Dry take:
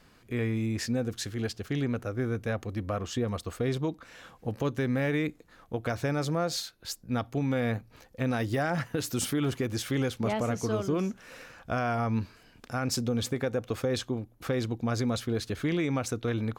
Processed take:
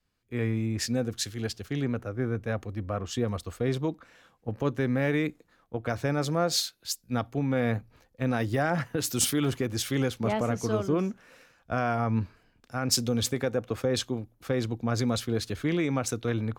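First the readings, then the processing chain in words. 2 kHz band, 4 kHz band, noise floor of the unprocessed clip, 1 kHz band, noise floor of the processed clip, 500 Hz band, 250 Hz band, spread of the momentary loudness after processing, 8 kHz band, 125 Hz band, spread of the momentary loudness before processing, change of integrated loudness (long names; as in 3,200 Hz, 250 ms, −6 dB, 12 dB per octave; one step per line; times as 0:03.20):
+1.0 dB, +4.5 dB, −59 dBFS, +1.5 dB, −68 dBFS, +1.5 dB, +1.0 dB, 8 LU, +6.0 dB, +1.0 dB, 7 LU, +1.5 dB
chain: multiband upward and downward expander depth 70%
level +1.5 dB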